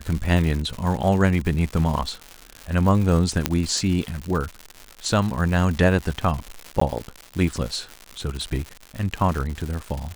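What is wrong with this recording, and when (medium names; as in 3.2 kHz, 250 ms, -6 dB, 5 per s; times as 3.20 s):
crackle 200 per s -27 dBFS
3.46 s: pop -2 dBFS
6.80–6.81 s: dropout 14 ms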